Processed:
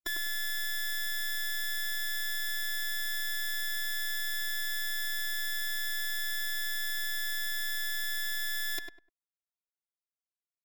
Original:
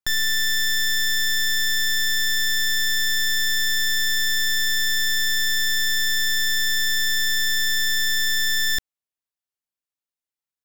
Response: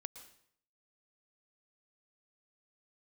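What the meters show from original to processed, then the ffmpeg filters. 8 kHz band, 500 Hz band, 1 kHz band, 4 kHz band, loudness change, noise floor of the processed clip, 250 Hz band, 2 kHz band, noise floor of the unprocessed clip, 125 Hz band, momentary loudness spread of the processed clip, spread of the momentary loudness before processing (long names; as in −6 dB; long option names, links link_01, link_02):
−14.0 dB, can't be measured, −5.0 dB, −14.5 dB, −12.0 dB, below −85 dBFS, below −15 dB, −11.5 dB, below −85 dBFS, below −10 dB, 0 LU, 0 LU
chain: -filter_complex "[0:a]afftdn=noise_reduction=16:noise_floor=-34,aeval=exprs='0.112*(cos(1*acos(clip(val(0)/0.112,-1,1)))-cos(1*PI/2))+0.00794*(cos(2*acos(clip(val(0)/0.112,-1,1)))-cos(2*PI/2))+0.002*(cos(3*acos(clip(val(0)/0.112,-1,1)))-cos(3*PI/2))+0.000794*(cos(6*acos(clip(val(0)/0.112,-1,1)))-cos(6*PI/2))+0.0501*(cos(7*acos(clip(val(0)/0.112,-1,1)))-cos(7*PI/2))':channel_layout=same,lowshelf=frequency=110:width_type=q:width=1.5:gain=-6.5,afftfilt=real='hypot(re,im)*cos(PI*b)':imag='0':win_size=512:overlap=0.75,asplit=2[link_01][link_02];[link_02]adelay=100,lowpass=frequency=1600:poles=1,volume=-4dB,asplit=2[link_03][link_04];[link_04]adelay=100,lowpass=frequency=1600:poles=1,volume=0.24,asplit=2[link_05][link_06];[link_06]adelay=100,lowpass=frequency=1600:poles=1,volume=0.24[link_07];[link_03][link_05][link_07]amix=inputs=3:normalize=0[link_08];[link_01][link_08]amix=inputs=2:normalize=0,volume=-3dB"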